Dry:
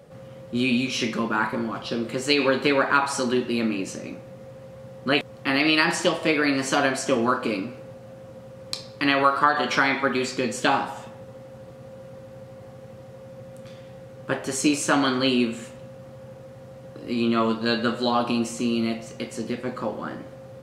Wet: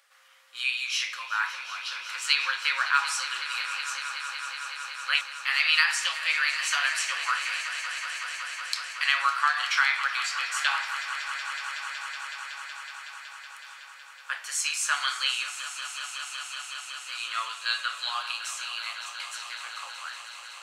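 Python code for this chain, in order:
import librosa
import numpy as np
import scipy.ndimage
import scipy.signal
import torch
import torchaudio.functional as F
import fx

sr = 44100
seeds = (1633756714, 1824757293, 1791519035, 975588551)

y = scipy.signal.sosfilt(scipy.signal.butter(4, 1300.0, 'highpass', fs=sr, output='sos'), x)
y = fx.echo_swell(y, sr, ms=186, loudest=5, wet_db=-14.5)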